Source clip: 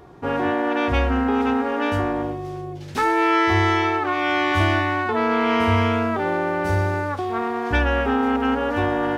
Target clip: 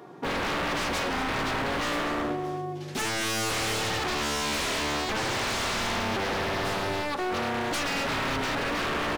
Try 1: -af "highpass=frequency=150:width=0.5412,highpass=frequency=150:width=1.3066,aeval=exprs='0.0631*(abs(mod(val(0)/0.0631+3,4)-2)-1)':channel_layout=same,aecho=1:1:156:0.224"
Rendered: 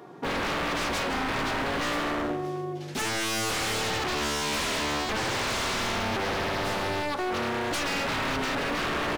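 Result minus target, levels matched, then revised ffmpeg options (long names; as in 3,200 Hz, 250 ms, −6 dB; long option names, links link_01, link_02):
echo 85 ms early
-af "highpass=frequency=150:width=0.5412,highpass=frequency=150:width=1.3066,aeval=exprs='0.0631*(abs(mod(val(0)/0.0631+3,4)-2)-1)':channel_layout=same,aecho=1:1:241:0.224"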